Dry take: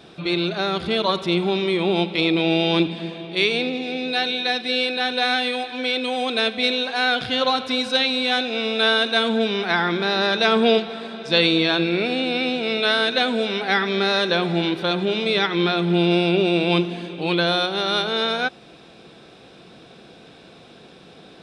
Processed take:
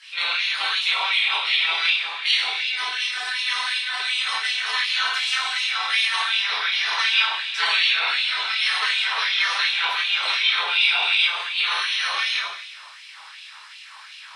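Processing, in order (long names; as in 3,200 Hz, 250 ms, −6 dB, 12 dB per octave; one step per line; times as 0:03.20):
gate on every frequency bin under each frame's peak −15 dB weak
time stretch by overlap-add 0.67×, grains 53 ms
coupled-rooms reverb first 0.75 s, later 2 s, DRR −7 dB
in parallel at −2 dB: downward compressor, threshold −33 dBFS, peak gain reduction 14 dB
on the sum: auto-filter high-pass sine 2.7 Hz 970–2,700 Hz
level −2 dB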